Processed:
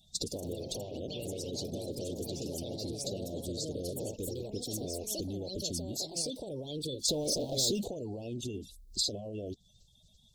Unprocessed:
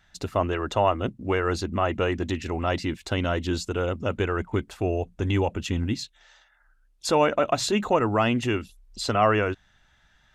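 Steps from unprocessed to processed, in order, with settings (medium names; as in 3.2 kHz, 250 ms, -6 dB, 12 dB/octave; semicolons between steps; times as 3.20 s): coarse spectral quantiser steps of 30 dB; peak limiter -20.5 dBFS, peak gain reduction 11.5 dB; ever faster or slower copies 147 ms, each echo +4 st, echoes 3; 0.79–1.58 s: peaking EQ 2.9 kHz +14.5 dB -> +5.5 dB 0.49 oct; compression 10:1, threshold -35 dBFS, peak gain reduction 13 dB; tilt shelf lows -4 dB, about 810 Hz; 7.08–7.88 s: waveshaping leveller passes 2; elliptic band-stop 570–3900 Hz, stop band 60 dB; trim +4.5 dB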